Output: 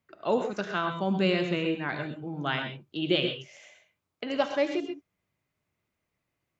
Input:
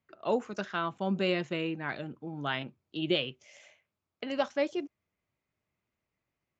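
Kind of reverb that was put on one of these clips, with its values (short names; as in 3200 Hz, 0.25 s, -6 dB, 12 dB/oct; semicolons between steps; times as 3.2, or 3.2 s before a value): non-linear reverb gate 0.15 s rising, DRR 5.5 dB; gain +2.5 dB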